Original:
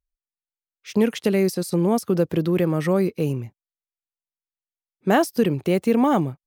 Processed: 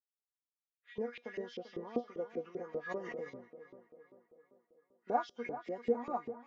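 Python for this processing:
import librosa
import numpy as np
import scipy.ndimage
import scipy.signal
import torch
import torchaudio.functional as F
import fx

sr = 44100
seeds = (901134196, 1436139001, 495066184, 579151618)

p1 = fx.freq_compress(x, sr, knee_hz=1300.0, ratio=1.5)
p2 = fx.rider(p1, sr, range_db=10, speed_s=0.5)
p3 = p1 + F.gain(torch.from_numpy(p2), 2.5).numpy()
p4 = fx.comb_fb(p3, sr, f0_hz=240.0, decay_s=0.18, harmonics='all', damping=0.0, mix_pct=90)
p5 = fx.echo_tape(p4, sr, ms=390, feedback_pct=59, wet_db=-10, lp_hz=2600.0, drive_db=8.0, wow_cents=16)
p6 = fx.filter_lfo_bandpass(p5, sr, shape='saw_up', hz=5.1, low_hz=380.0, high_hz=3000.0, q=2.6)
p7 = fx.pre_swell(p6, sr, db_per_s=25.0, at=(2.88, 3.28), fade=0.02)
y = F.gain(torch.from_numpy(p7), -6.5).numpy()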